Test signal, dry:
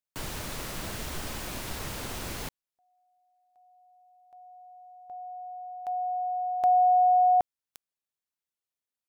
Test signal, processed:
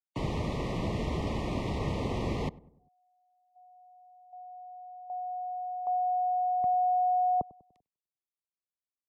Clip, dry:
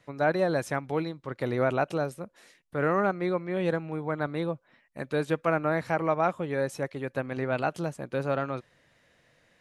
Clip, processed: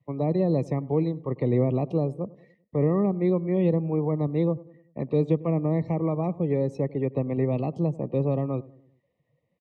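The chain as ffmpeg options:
-filter_complex "[0:a]acrossover=split=300|3800[s0][s1][s2];[s1]acompressor=threshold=0.0282:ratio=6:attack=0.16:release=622:knee=2.83:detection=peak[s3];[s0][s3][s2]amix=inputs=3:normalize=0,afftdn=nr=19:nf=-52,asuperstop=centerf=1500:order=12:qfactor=2.5,lowshelf=f=300:g=10,acrossover=split=190|1500[s4][s5][s6];[s6]adynamicsmooth=sensitivity=1.5:basefreq=3000[s7];[s4][s5][s7]amix=inputs=3:normalize=0,adynamicequalizer=threshold=0.00631:dfrequency=450:dqfactor=2.9:tfrequency=450:tqfactor=2.9:attack=5:release=100:ratio=0.375:range=2.5:mode=boostabove:tftype=bell,highpass=f=120:p=1,asplit=2[s8][s9];[s9]adelay=98,lowpass=f=990:p=1,volume=0.106,asplit=2[s10][s11];[s11]adelay=98,lowpass=f=990:p=1,volume=0.51,asplit=2[s12][s13];[s13]adelay=98,lowpass=f=990:p=1,volume=0.51,asplit=2[s14][s15];[s15]adelay=98,lowpass=f=990:p=1,volume=0.51[s16];[s8][s10][s12][s14][s16]amix=inputs=5:normalize=0,volume=1.5"

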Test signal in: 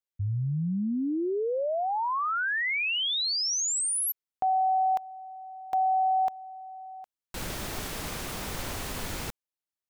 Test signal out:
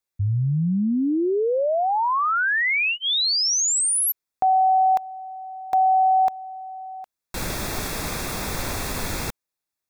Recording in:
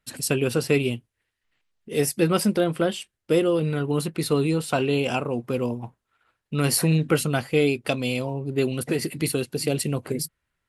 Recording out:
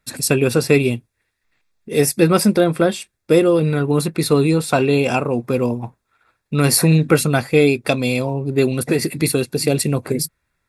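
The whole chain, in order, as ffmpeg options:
-af "asuperstop=centerf=3000:order=4:qfactor=6.6,volume=2.24"

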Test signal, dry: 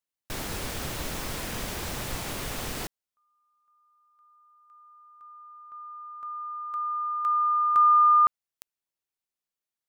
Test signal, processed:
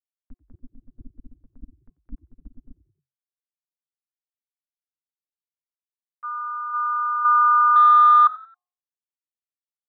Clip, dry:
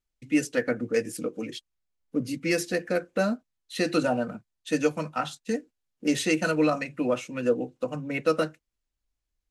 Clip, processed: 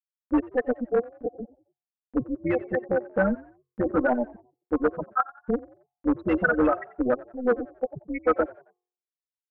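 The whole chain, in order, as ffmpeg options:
-filter_complex "[0:a]afftfilt=real='re*gte(hypot(re,im),0.224)':imag='im*gte(hypot(re,im),0.224)':win_size=1024:overlap=0.75,agate=range=0.398:threshold=0.00282:ratio=3:release=70:detection=rms,tremolo=f=250:d=0.571,acompressor=mode=upward:threshold=0.00631:ratio=2.5:attack=2.8:release=91:knee=2.83:detection=peak,asoftclip=type=hard:threshold=0.0841,lowpass=f=1500:t=q:w=2.2,bandreject=f=359:t=h:w=4,bandreject=f=718:t=h:w=4,bandreject=f=1077:t=h:w=4,asplit=2[s0][s1];[s1]asplit=3[s2][s3][s4];[s2]adelay=90,afreqshift=44,volume=0.0944[s5];[s3]adelay=180,afreqshift=88,volume=0.0351[s6];[s4]adelay=270,afreqshift=132,volume=0.0129[s7];[s5][s6][s7]amix=inputs=3:normalize=0[s8];[s0][s8]amix=inputs=2:normalize=0,volume=1.78"

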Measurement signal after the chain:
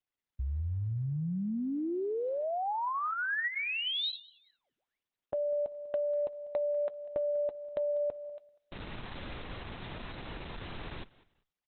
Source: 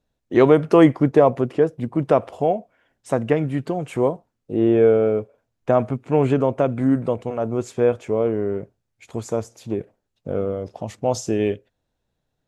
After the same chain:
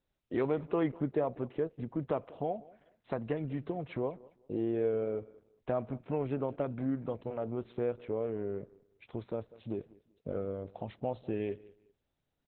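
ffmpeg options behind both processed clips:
-filter_complex "[0:a]acompressor=threshold=0.0398:ratio=2,asplit=2[s0][s1];[s1]aecho=0:1:195|390:0.0891|0.0241[s2];[s0][s2]amix=inputs=2:normalize=0,volume=0.447" -ar 48000 -c:a libopus -b:a 8k

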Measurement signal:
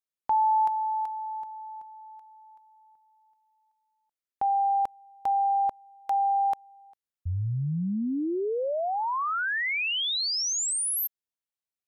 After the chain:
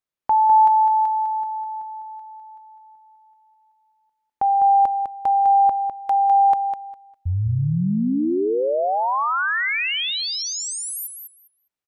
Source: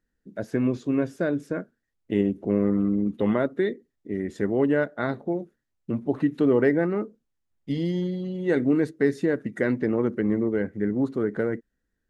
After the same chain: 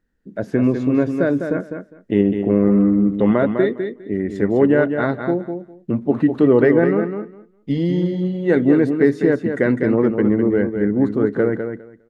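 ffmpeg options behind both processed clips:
-af "highshelf=f=4000:g=-10,aecho=1:1:203|406|609:0.447|0.0715|0.0114,volume=2.24"

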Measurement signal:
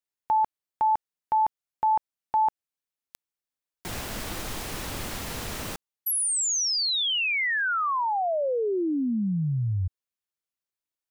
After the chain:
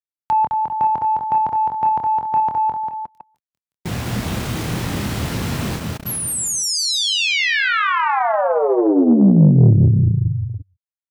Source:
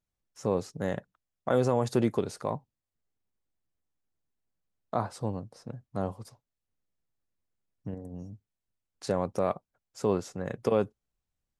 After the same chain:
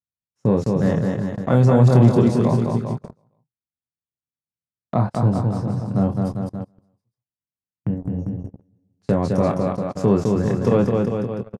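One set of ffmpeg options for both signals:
-filter_complex "[0:a]bass=f=250:g=14,treble=f=4000:g=-2,asplit=2[s0][s1];[s1]adelay=25,volume=0.447[s2];[s0][s2]amix=inputs=2:normalize=0,asplit=2[s3][s4];[s4]aecho=0:1:210|399|569.1|722.2|860:0.631|0.398|0.251|0.158|0.1[s5];[s3][s5]amix=inputs=2:normalize=0,asoftclip=type=tanh:threshold=0.376,highpass=110,highshelf=f=8100:g=-4.5,agate=range=0.0501:threshold=0.02:ratio=16:release=48:detection=rms,volume=1.88"

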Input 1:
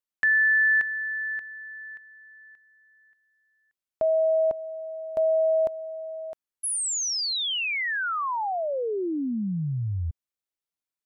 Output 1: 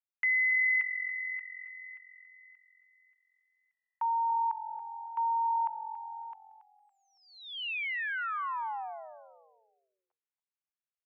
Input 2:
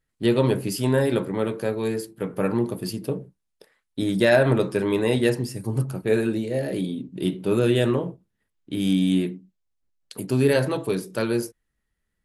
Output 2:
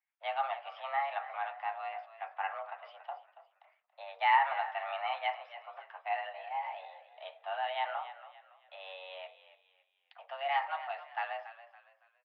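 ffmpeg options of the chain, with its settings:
-filter_complex "[0:a]asplit=5[s0][s1][s2][s3][s4];[s1]adelay=280,afreqshift=-44,volume=0.211[s5];[s2]adelay=560,afreqshift=-88,volume=0.0822[s6];[s3]adelay=840,afreqshift=-132,volume=0.032[s7];[s4]adelay=1120,afreqshift=-176,volume=0.0126[s8];[s0][s5][s6][s7][s8]amix=inputs=5:normalize=0,highpass=f=520:t=q:w=0.5412,highpass=f=520:t=q:w=1.307,lowpass=f=2700:t=q:w=0.5176,lowpass=f=2700:t=q:w=0.7071,lowpass=f=2700:t=q:w=1.932,afreqshift=280,volume=0.473"

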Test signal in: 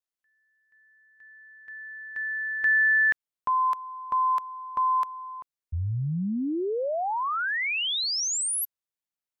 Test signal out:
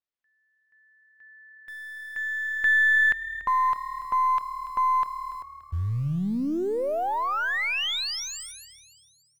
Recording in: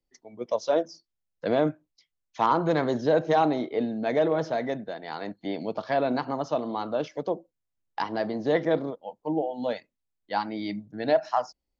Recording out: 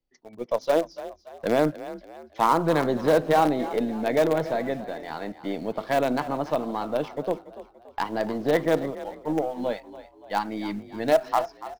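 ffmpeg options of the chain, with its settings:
-filter_complex "[0:a]lowpass=4200,asplit=2[s0][s1];[s1]acrusher=bits=4:dc=4:mix=0:aa=0.000001,volume=0.282[s2];[s0][s2]amix=inputs=2:normalize=0,asplit=5[s3][s4][s5][s6][s7];[s4]adelay=287,afreqshift=37,volume=0.178[s8];[s5]adelay=574,afreqshift=74,volume=0.075[s9];[s6]adelay=861,afreqshift=111,volume=0.0313[s10];[s7]adelay=1148,afreqshift=148,volume=0.0132[s11];[s3][s8][s9][s10][s11]amix=inputs=5:normalize=0"

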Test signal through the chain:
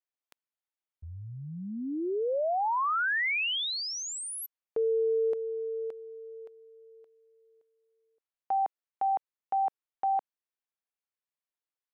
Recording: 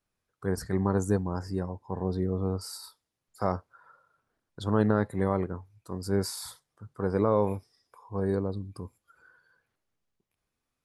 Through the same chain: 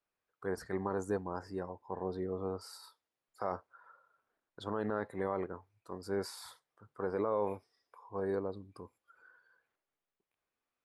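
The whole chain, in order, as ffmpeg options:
-af "bass=f=250:g=-14,treble=f=4000:g=-10,alimiter=limit=0.0891:level=0:latency=1:release=25,volume=0.75"

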